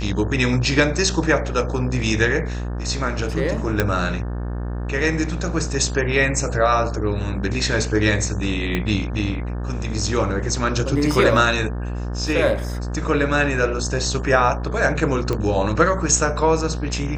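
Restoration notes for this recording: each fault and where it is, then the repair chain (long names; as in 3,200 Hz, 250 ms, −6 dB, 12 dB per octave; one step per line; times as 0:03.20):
mains buzz 60 Hz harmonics 30 −26 dBFS
0:03.80: click −4 dBFS
0:08.75: click −9 dBFS
0:15.33: click −11 dBFS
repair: click removal
hum removal 60 Hz, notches 30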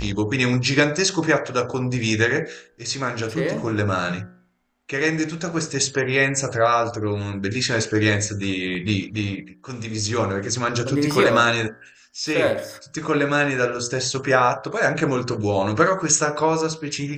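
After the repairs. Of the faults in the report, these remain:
0:08.75: click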